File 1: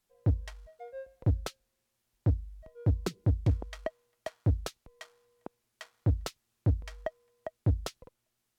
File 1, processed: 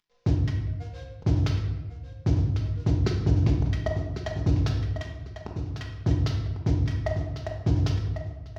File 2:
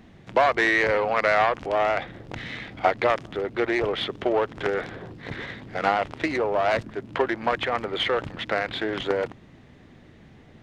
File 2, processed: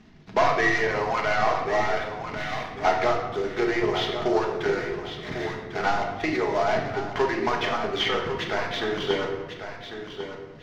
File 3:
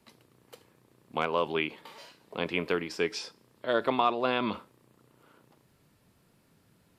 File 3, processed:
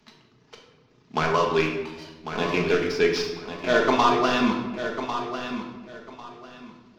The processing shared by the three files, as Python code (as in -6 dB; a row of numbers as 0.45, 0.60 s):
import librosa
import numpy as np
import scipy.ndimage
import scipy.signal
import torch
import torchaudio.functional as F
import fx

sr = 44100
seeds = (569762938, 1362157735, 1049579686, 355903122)

p1 = fx.cvsd(x, sr, bps=32000)
p2 = np.sign(p1) * np.maximum(np.abs(p1) - 10.0 ** (-47.5 / 20.0), 0.0)
p3 = p1 + (p2 * 10.0 ** (-3.0 / 20.0))
p4 = fx.peak_eq(p3, sr, hz=550.0, db=-9.5, octaves=0.26)
p5 = fx.dereverb_blind(p4, sr, rt60_s=0.95)
p6 = p5 + fx.echo_feedback(p5, sr, ms=1098, feedback_pct=23, wet_db=-9.5, dry=0)
p7 = fx.room_shoebox(p6, sr, seeds[0], volume_m3=670.0, walls='mixed', distance_m=1.4)
y = p7 * 10.0 ** (-26 / 20.0) / np.sqrt(np.mean(np.square(p7)))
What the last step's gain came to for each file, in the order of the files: 0.0, -5.0, +3.0 dB